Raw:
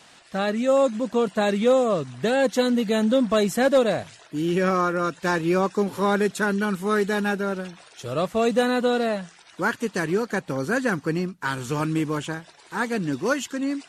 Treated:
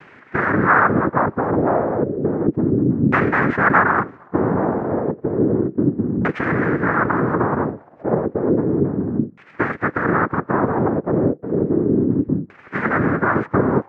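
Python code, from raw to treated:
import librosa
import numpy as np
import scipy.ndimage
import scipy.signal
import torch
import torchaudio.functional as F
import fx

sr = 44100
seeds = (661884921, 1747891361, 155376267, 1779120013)

p1 = fx.bit_reversed(x, sr, seeds[0], block=32)
p2 = fx.over_compress(p1, sr, threshold_db=-28.0, ratio=-0.5)
p3 = p1 + (p2 * librosa.db_to_amplitude(2.5))
p4 = fx.noise_vocoder(p3, sr, seeds[1], bands=3)
p5 = fx.filter_lfo_lowpass(p4, sr, shape='saw_down', hz=0.32, low_hz=220.0, high_hz=2600.0, q=1.9)
p6 = fx.high_shelf_res(p5, sr, hz=2400.0, db=-11.5, q=1.5)
y = p6 * librosa.db_to_amplitude(1.0)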